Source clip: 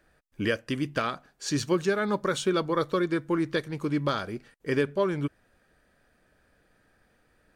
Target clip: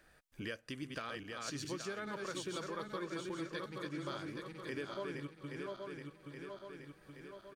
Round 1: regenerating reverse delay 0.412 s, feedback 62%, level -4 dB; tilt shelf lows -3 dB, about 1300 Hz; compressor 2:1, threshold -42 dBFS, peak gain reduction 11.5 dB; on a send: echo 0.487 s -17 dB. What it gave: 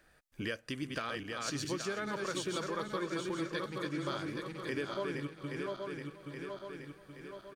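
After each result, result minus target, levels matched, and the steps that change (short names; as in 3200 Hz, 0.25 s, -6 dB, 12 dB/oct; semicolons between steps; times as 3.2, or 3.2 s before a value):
compressor: peak gain reduction -5 dB; echo-to-direct +6.5 dB
change: compressor 2:1, threshold -52 dBFS, peak gain reduction 16.5 dB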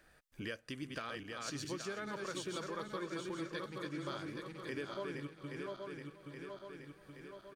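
echo-to-direct +6.5 dB
change: echo 0.487 s -23.5 dB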